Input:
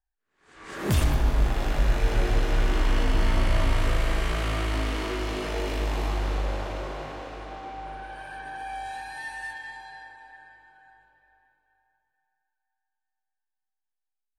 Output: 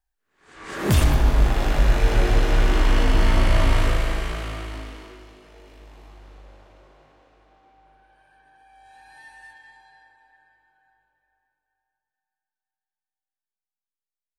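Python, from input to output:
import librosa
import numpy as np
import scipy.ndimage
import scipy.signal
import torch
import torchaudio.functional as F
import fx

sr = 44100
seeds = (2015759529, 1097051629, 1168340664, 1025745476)

y = fx.gain(x, sr, db=fx.line((3.79, 5.0), (4.77, -7.0), (5.41, -19.0), (8.72, -19.0), (9.14, -10.0)))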